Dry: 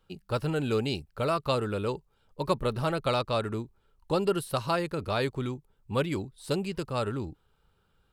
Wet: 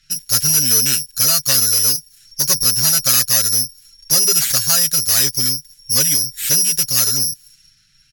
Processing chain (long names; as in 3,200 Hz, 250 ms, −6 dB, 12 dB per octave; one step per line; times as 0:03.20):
high-shelf EQ 7,100 Hz +10.5 dB
bad sample-rate conversion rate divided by 8×, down none, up zero stuff
elliptic band-stop filter 220–1,600 Hz
in parallel at −2 dB: downward compressor, threshold −35 dBFS, peak gain reduction 23 dB
on the sum: soft clipping −14.5 dBFS, distortion −7 dB
high-shelf EQ 2,900 Hz +9.5 dB
comb filter 7.4 ms, depth 73%
low-pass that shuts in the quiet parts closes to 3,000 Hz, open at −21.5 dBFS
level +1 dB